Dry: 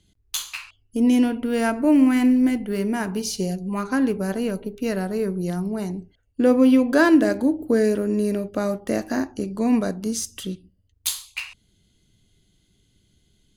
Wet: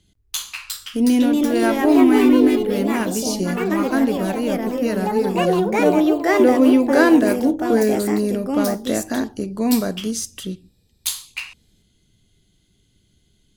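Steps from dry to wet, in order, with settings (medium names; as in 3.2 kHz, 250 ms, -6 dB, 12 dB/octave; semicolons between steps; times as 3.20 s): ever faster or slower copies 412 ms, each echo +3 st, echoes 3; trim +1.5 dB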